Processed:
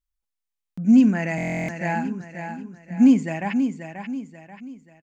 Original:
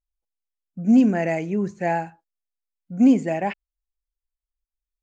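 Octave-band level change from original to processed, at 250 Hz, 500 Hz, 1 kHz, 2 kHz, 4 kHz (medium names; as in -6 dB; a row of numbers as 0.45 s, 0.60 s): +1.5 dB, -5.5 dB, -2.5 dB, +3.0 dB, no reading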